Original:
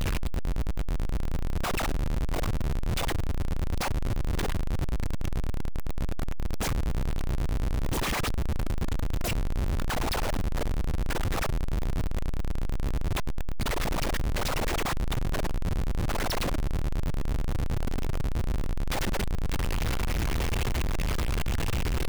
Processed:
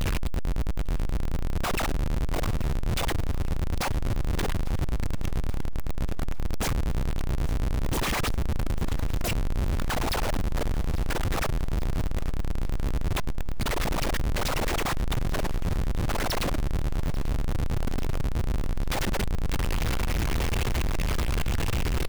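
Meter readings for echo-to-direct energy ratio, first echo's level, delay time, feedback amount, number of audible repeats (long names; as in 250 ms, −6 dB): −18.5 dB, −20.0 dB, 844 ms, 52%, 3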